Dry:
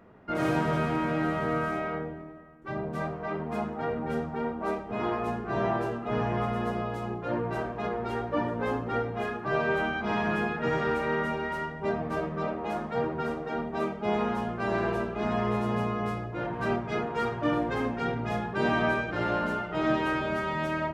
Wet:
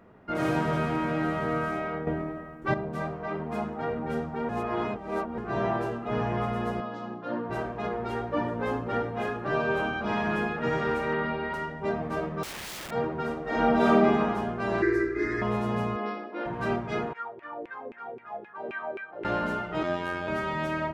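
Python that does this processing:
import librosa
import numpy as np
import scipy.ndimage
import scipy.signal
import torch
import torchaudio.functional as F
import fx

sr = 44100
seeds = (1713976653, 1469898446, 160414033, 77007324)

y = fx.cabinet(x, sr, low_hz=220.0, low_slope=12, high_hz=5500.0, hz=(260.0, 400.0, 810.0, 2300.0), db=(7, -10, -4, -10), at=(6.8, 7.5))
y = fx.echo_throw(y, sr, start_s=8.3, length_s=0.61, ms=560, feedback_pct=70, wet_db=-9.0)
y = fx.notch(y, sr, hz=2000.0, q=6.4, at=(9.54, 10.09))
y = fx.steep_lowpass(y, sr, hz=4900.0, slope=72, at=(11.13, 11.54))
y = fx.overflow_wrap(y, sr, gain_db=34.0, at=(12.43, 12.91))
y = fx.reverb_throw(y, sr, start_s=13.43, length_s=0.51, rt60_s=1.5, drr_db=-10.0)
y = fx.curve_eq(y, sr, hz=(110.0, 200.0, 320.0, 750.0, 2000.0, 2900.0, 4900.0, 10000.0), db=(0, -23, 15, -23, 14, -18, 3, -2), at=(14.82, 15.42))
y = fx.brickwall_bandpass(y, sr, low_hz=200.0, high_hz=5800.0, at=(15.96, 16.46))
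y = fx.filter_lfo_bandpass(y, sr, shape='saw_down', hz=3.8, low_hz=360.0, high_hz=2500.0, q=5.0, at=(17.13, 19.25))
y = fx.robotise(y, sr, hz=88.2, at=(19.83, 20.28))
y = fx.edit(y, sr, fx.clip_gain(start_s=2.07, length_s=0.67, db=10.0),
    fx.reverse_span(start_s=4.49, length_s=0.89), tone=tone)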